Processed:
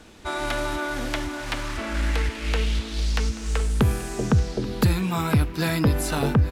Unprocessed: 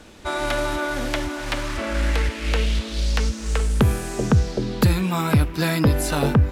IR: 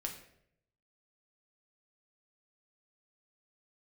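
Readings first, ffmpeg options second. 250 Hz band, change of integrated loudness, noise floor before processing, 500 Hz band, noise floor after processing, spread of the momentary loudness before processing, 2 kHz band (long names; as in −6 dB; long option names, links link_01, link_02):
−2.5 dB, −2.5 dB, −33 dBFS, −3.5 dB, −35 dBFS, 7 LU, −2.5 dB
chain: -filter_complex "[0:a]bandreject=frequency=560:width=12,asplit=2[link_01][link_02];[link_02]aecho=0:1:833:0.119[link_03];[link_01][link_03]amix=inputs=2:normalize=0,volume=-2.5dB"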